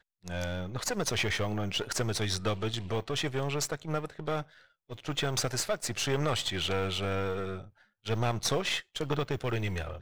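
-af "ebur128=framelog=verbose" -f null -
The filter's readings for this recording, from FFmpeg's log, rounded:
Integrated loudness:
  I:         -31.9 LUFS
  Threshold: -42.2 LUFS
Loudness range:
  LRA:         1.8 LU
  Threshold: -52.2 LUFS
  LRA low:   -33.3 LUFS
  LRA high:  -31.5 LUFS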